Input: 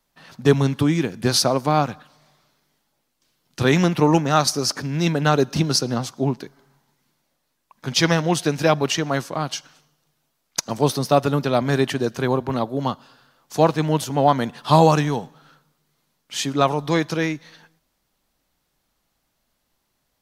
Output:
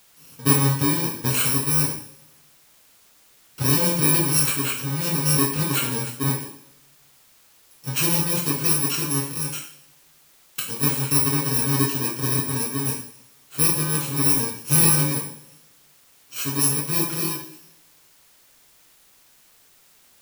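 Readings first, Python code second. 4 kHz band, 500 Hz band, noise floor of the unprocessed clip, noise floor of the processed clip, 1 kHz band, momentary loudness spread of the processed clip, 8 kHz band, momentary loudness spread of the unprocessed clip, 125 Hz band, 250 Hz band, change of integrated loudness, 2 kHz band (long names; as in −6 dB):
−2.5 dB, −11.0 dB, −73 dBFS, −56 dBFS, −10.0 dB, 12 LU, +7.0 dB, 10 LU, −2.0 dB, −5.0 dB, +0.5 dB, −3.0 dB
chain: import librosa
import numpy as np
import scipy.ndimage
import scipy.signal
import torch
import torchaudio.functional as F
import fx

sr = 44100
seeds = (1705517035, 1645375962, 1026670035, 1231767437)

y = fx.bit_reversed(x, sr, seeds[0], block=64)
y = fx.rev_double_slope(y, sr, seeds[1], early_s=0.53, late_s=1.5, knee_db=-23, drr_db=-4.0)
y = fx.quant_dither(y, sr, seeds[2], bits=8, dither='triangular')
y = F.gain(torch.from_numpy(y), -7.5).numpy()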